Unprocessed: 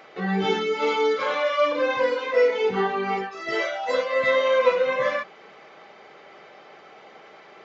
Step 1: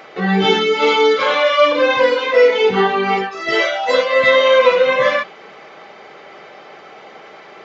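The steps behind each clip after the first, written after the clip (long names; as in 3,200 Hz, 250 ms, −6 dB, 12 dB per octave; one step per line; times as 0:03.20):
dynamic equaliser 3,300 Hz, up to +5 dB, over −42 dBFS, Q 1.5
boost into a limiter +9.5 dB
level −1 dB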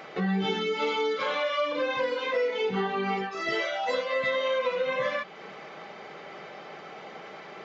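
parametric band 170 Hz +6.5 dB 0.76 octaves
downward compressor 3 to 1, threshold −24 dBFS, peak gain reduction 13 dB
level −4.5 dB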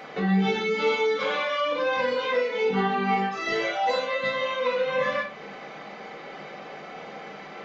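rectangular room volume 370 cubic metres, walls furnished, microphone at 1.9 metres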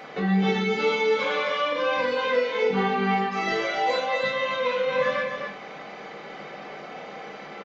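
single-tap delay 257 ms −6 dB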